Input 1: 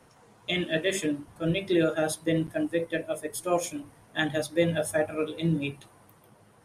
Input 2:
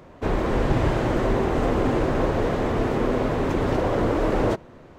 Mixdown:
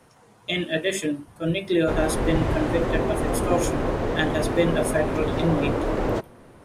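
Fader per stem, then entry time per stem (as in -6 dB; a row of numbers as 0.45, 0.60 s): +2.5, -2.5 dB; 0.00, 1.65 s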